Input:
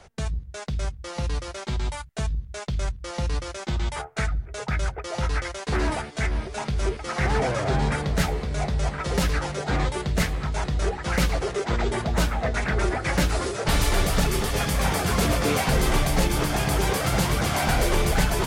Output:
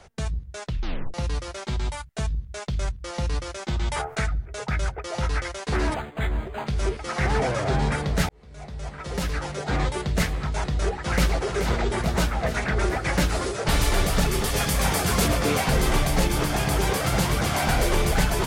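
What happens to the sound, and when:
0.64 tape stop 0.50 s
3.81–4.21 fast leveller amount 50%
5.94–6.67 decimation joined by straight lines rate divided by 8×
8.29–9.84 fade in
10.67–11.37 echo throw 0.43 s, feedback 75%, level -7.5 dB
14.44–15.28 high shelf 4400 Hz +5 dB

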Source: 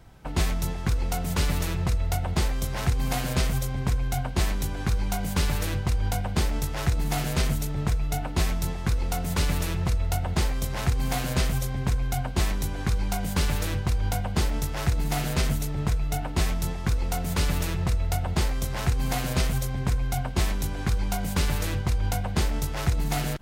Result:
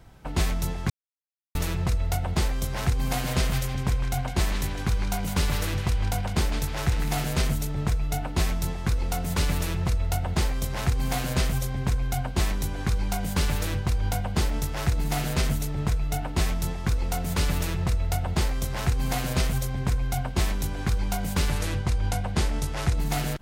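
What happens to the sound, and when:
0.9–1.55 mute
3.09–7.25 narrowing echo 0.156 s, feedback 49%, band-pass 2300 Hz, level -4 dB
21.5–22.97 LPF 12000 Hz 24 dB/oct

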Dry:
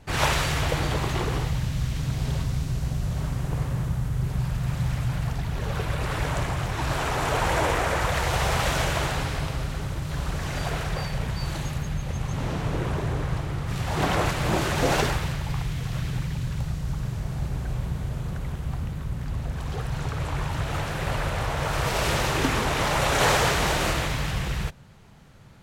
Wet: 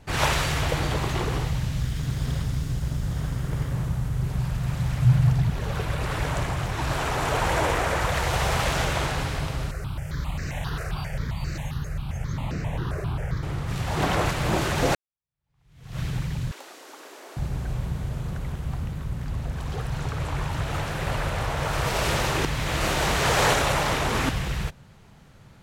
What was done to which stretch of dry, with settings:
1.81–3.72 minimum comb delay 0.58 ms
5.02–5.5 bell 130 Hz +11.5 dB
8.64–9.18 Doppler distortion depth 0.38 ms
9.71–13.43 step phaser 7.5 Hz 900–3300 Hz
14.95–16 fade in exponential
16.51–17.37 steep high-pass 300 Hz 48 dB/oct
22.45–24.29 reverse

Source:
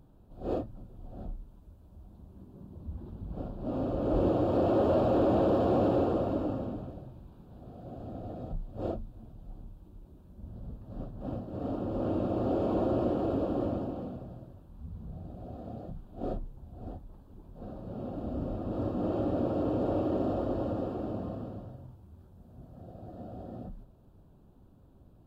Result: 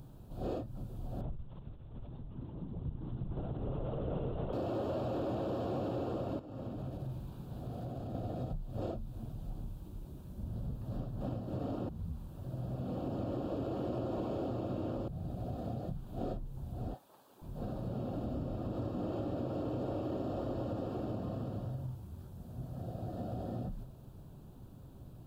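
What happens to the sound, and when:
1.21–4.53 LPC vocoder at 8 kHz whisper
6.39–8.15 compressor 16:1, threshold -42 dBFS
11.89–15.08 reverse
16.94–17.42 HPF 620 Hz
whole clip: bell 130 Hz +7.5 dB 0.51 oct; compressor 6:1, threshold -39 dBFS; high shelf 2600 Hz +9 dB; gain +4 dB

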